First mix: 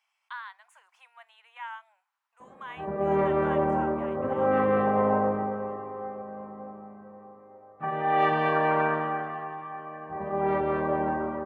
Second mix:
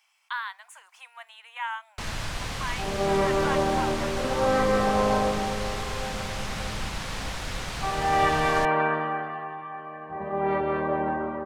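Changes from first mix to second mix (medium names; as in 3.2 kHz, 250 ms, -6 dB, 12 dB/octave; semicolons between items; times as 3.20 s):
speech +5.5 dB; first sound: unmuted; master: add treble shelf 3.1 kHz +10 dB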